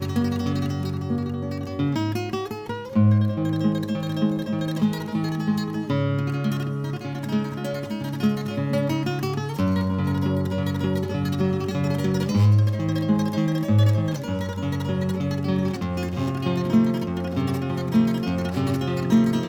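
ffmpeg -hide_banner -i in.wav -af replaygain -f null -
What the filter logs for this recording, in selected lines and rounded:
track_gain = +5.9 dB
track_peak = 0.270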